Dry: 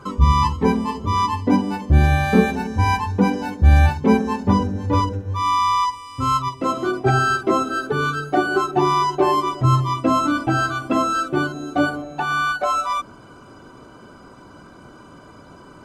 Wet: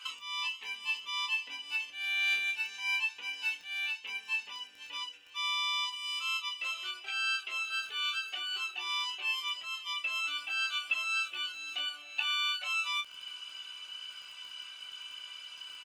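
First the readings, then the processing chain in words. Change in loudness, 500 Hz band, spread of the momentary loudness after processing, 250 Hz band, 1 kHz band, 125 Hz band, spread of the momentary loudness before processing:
-13.5 dB, under -40 dB, 13 LU, under -40 dB, -23.5 dB, under -40 dB, 7 LU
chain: compressor 3:1, threshold -31 dBFS, peak gain reduction 17 dB; resonant high-pass 2800 Hz, resonance Q 11; crackle 12/s -42 dBFS; on a send: early reflections 17 ms -7.5 dB, 28 ms -7.5 dB

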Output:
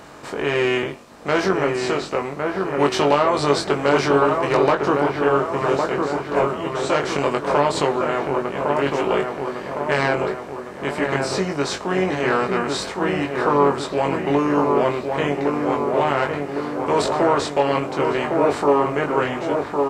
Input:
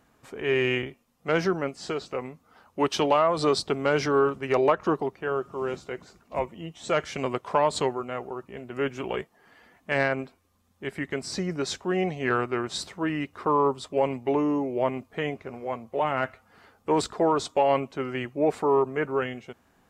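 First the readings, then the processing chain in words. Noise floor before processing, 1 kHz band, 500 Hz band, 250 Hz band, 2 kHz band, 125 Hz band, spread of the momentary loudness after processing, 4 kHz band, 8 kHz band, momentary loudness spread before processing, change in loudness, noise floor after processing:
-65 dBFS, +7.5 dB, +6.5 dB, +7.0 dB, +7.0 dB, +7.0 dB, 7 LU, +6.0 dB, +5.5 dB, 13 LU, +6.5 dB, -33 dBFS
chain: per-bin compression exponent 0.6; doubler 21 ms -4 dB; dark delay 1.108 s, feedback 55%, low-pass 2000 Hz, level -4 dB

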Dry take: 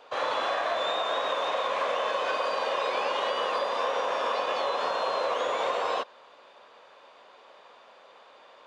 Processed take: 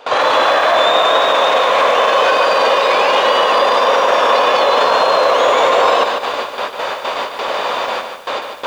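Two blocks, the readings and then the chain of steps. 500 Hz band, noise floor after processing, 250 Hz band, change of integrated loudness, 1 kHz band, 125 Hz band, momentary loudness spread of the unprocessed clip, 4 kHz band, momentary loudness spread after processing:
+16.5 dB, -28 dBFS, +17.0 dB, +15.0 dB, +16.5 dB, n/a, 1 LU, +17.0 dB, 10 LU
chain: gate with hold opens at -43 dBFS; in parallel at 0 dB: negative-ratio compressor -36 dBFS, ratio -0.5; on the sum: maximiser +24.5 dB; lo-fi delay 0.148 s, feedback 35%, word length 6-bit, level -6.5 dB; gain -4 dB

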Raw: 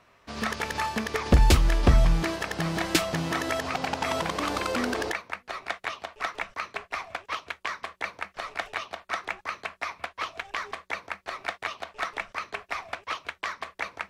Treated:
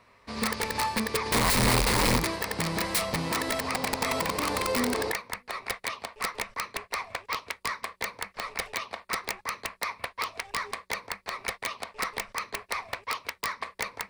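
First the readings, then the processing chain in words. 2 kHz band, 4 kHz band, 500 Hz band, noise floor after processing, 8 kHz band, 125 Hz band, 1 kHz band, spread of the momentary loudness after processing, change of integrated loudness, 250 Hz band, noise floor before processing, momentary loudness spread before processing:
0.0 dB, +2.5 dB, 0.0 dB, -62 dBFS, +6.0 dB, -6.0 dB, +0.5 dB, 11 LU, -0.5 dB, -1.0 dB, -62 dBFS, 13 LU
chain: wrapped overs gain 19.5 dB; ripple EQ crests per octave 0.93, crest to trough 6 dB

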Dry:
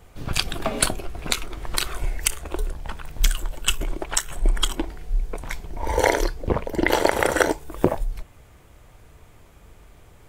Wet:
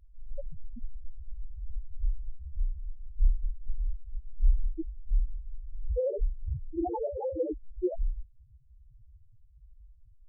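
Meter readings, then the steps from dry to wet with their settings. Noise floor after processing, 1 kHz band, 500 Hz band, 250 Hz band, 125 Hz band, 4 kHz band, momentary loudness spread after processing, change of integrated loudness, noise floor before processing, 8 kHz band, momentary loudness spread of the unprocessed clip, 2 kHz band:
-58 dBFS, -17.5 dB, -9.5 dB, -10.5 dB, -6.5 dB, under -40 dB, 15 LU, -10.5 dB, -51 dBFS, under -40 dB, 12 LU, under -40 dB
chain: sample-and-hold 16×; loudest bins only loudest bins 1; gain +2.5 dB

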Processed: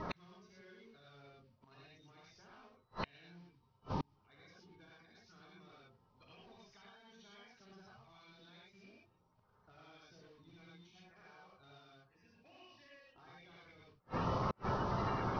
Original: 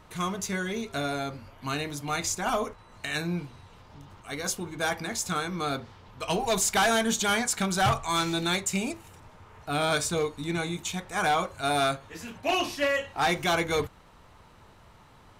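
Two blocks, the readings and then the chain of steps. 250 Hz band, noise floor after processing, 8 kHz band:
-16.5 dB, -74 dBFS, -39.0 dB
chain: bin magnitudes rounded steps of 30 dB; in parallel at -6 dB: wrapped overs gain 25.5 dB; on the sum: random-step tremolo; compressor 4:1, threshold -34 dBFS, peak gain reduction 10.5 dB; low shelf 190 Hz +7 dB; non-linear reverb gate 0.14 s rising, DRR -4.5 dB; flipped gate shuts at -34 dBFS, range -41 dB; low shelf 91 Hz -10 dB; vocal rider 0.5 s; steep low-pass 5800 Hz 96 dB/oct; gain +14.5 dB

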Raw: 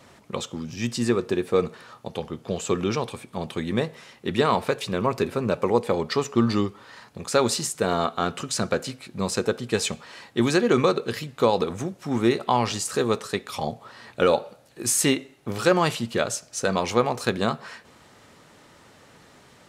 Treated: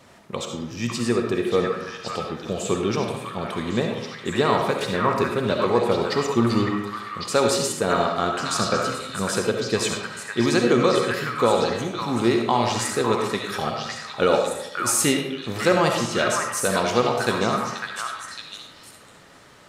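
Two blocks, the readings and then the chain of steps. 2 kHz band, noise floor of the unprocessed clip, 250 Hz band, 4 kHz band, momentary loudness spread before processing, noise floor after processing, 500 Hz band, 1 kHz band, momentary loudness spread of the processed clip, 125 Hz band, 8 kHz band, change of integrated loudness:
+4.5 dB, -54 dBFS, +1.5 dB, +3.0 dB, 12 LU, -48 dBFS, +2.0 dB, +3.5 dB, 10 LU, +1.5 dB, +2.0 dB, +2.0 dB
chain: delay with a stepping band-pass 0.553 s, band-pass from 1500 Hz, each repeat 1.4 oct, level 0 dB; digital reverb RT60 0.85 s, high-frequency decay 0.6×, pre-delay 25 ms, DRR 2.5 dB

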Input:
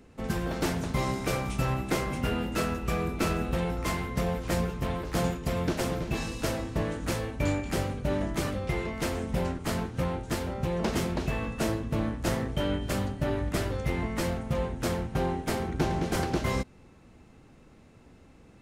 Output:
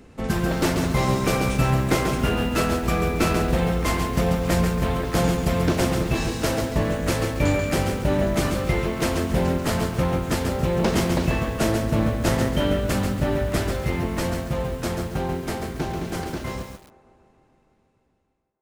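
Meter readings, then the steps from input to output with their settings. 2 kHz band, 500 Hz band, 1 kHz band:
+7.0 dB, +7.0 dB, +6.5 dB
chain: ending faded out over 6.14 s; on a send: band-limited delay 0.15 s, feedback 74%, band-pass 740 Hz, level -20 dB; on the sum: lo-fi delay 0.138 s, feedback 35%, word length 8-bit, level -5.5 dB; gain +6.5 dB

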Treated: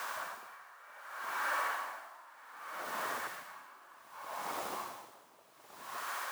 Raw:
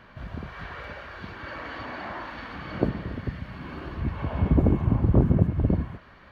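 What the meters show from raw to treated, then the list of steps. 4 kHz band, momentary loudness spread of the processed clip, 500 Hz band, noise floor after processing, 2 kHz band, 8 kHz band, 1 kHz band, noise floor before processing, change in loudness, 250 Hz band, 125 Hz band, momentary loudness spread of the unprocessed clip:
-1.5 dB, 19 LU, -14.5 dB, -61 dBFS, -1.0 dB, n/a, -0.5 dB, -51 dBFS, -13.0 dB, -31.0 dB, under -40 dB, 17 LU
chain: hard clip -22 dBFS, distortion -6 dB; compressor, threshold -34 dBFS, peak gain reduction 10 dB; bell 1100 Hz +13 dB 1.9 oct; limiter -27.5 dBFS, peak gain reduction 9.5 dB; flange 1.8 Hz, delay 5.2 ms, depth 6.3 ms, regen -45%; requantised 8-bit, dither triangular; HPF 670 Hz 12 dB/oct; high shelf 4000 Hz -8.5 dB; soft clip -29.5 dBFS, distortion -28 dB; on a send: flutter echo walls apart 11.4 m, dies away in 0.54 s; on the sum: dB-linear tremolo 0.65 Hz, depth 23 dB; gain +7.5 dB

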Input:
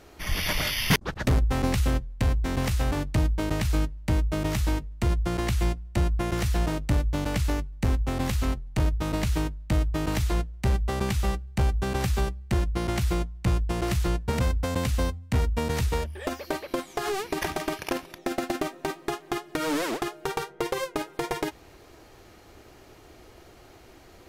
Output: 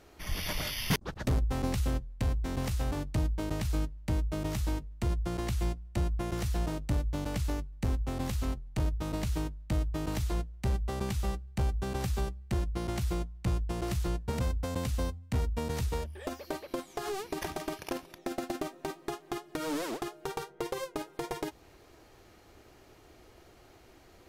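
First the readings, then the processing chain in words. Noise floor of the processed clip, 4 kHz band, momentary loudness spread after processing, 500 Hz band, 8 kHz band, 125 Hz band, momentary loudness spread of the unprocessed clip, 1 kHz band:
-58 dBFS, -7.5 dB, 6 LU, -6.5 dB, -6.5 dB, -6.0 dB, 6 LU, -7.0 dB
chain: dynamic EQ 2000 Hz, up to -4 dB, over -44 dBFS, Q 0.95; gain -6 dB

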